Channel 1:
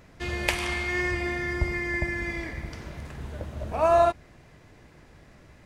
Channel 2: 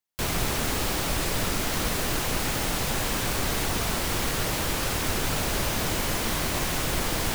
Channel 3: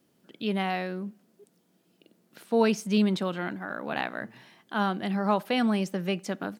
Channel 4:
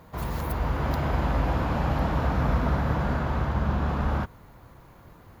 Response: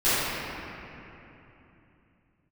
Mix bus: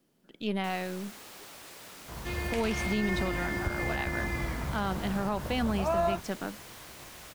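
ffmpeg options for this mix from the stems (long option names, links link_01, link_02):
-filter_complex "[0:a]adelay=2050,volume=-4.5dB[link_01];[1:a]highpass=frequency=500:poles=1,adelay=450,volume=-18.5dB[link_02];[2:a]aeval=exprs='if(lt(val(0),0),0.708*val(0),val(0))':channel_layout=same,volume=-2dB[link_03];[3:a]adelay=1950,volume=-11.5dB[link_04];[link_01][link_02][link_03][link_04]amix=inputs=4:normalize=0,alimiter=limit=-19dB:level=0:latency=1:release=108"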